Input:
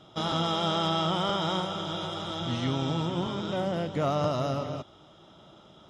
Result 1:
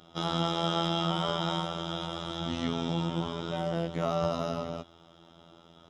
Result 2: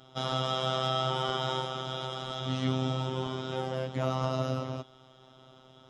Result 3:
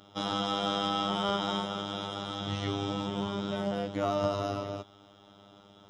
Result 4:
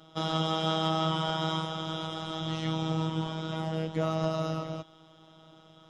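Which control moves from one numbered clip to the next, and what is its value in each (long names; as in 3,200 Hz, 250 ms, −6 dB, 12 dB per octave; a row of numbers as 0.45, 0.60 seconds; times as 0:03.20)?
phases set to zero, frequency: 84, 130, 100, 160 Hertz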